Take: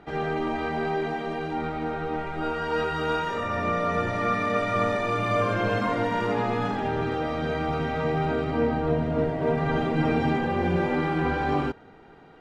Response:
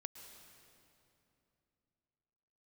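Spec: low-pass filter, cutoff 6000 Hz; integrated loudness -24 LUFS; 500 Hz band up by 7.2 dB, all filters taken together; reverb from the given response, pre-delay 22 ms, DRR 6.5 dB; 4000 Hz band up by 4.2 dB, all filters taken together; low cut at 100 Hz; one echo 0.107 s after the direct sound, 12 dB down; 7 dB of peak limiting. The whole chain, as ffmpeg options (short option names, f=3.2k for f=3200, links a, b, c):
-filter_complex "[0:a]highpass=100,lowpass=6k,equalizer=f=500:t=o:g=8.5,equalizer=f=4k:t=o:g=6,alimiter=limit=-14dB:level=0:latency=1,aecho=1:1:107:0.251,asplit=2[a][b];[1:a]atrim=start_sample=2205,adelay=22[c];[b][c]afir=irnorm=-1:irlink=0,volume=-2.5dB[d];[a][d]amix=inputs=2:normalize=0,volume=-1.5dB"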